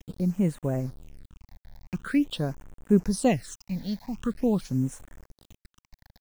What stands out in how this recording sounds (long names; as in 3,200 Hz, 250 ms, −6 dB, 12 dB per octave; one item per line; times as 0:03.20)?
a quantiser's noise floor 8 bits, dither none
phaser sweep stages 8, 0.45 Hz, lowest notch 360–4,700 Hz